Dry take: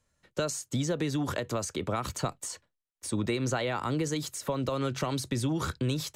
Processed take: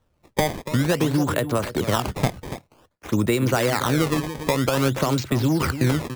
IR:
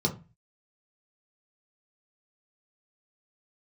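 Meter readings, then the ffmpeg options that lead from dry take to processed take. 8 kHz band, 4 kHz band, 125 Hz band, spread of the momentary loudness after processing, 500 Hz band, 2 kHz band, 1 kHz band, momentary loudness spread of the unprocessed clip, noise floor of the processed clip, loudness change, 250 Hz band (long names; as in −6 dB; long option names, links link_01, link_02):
+3.5 dB, +7.5 dB, +9.5 dB, 6 LU, +9.0 dB, +10.5 dB, +9.0 dB, 5 LU, −67 dBFS, +9.0 dB, +9.0 dB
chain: -filter_complex "[0:a]asplit=2[link_01][link_02];[link_02]adelay=285.7,volume=-11dB,highshelf=frequency=4000:gain=-6.43[link_03];[link_01][link_03]amix=inputs=2:normalize=0,adynamicsmooth=sensitivity=8:basefreq=3200,acrusher=samples=18:mix=1:aa=0.000001:lfo=1:lforange=28.8:lforate=0.52,volume=9dB"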